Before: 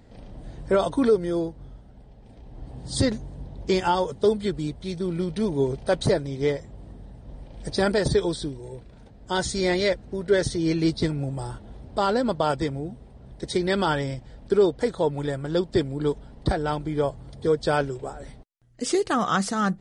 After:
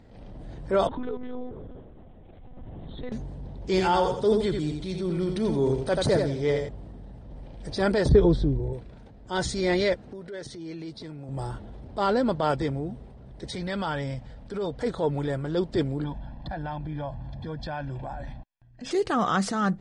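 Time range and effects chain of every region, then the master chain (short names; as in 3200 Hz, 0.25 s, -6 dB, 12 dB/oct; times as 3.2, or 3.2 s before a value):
0.87–3.12 compressor 2.5:1, threshold -34 dBFS + narrowing echo 0.214 s, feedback 51%, band-pass 600 Hz, level -12 dB + monotone LPC vocoder at 8 kHz 250 Hz
3.64–6.69 high shelf 6900 Hz +7 dB + feedback echo 85 ms, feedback 30%, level -7.5 dB
8.09–8.73 LPF 7000 Hz + tilt -3.5 dB/oct
9.94–11.29 HPF 170 Hz 6 dB/oct + compressor 2.5:1, threshold -40 dBFS
13.45–14.83 bell 360 Hz -12 dB 0.3 oct + compressor 2:1, threshold -28 dBFS
16.04–18.91 LPF 3600 Hz + comb 1.2 ms, depth 96% + compressor, threshold -29 dBFS
whole clip: high shelf 7100 Hz -12 dB; transient shaper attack -6 dB, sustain +3 dB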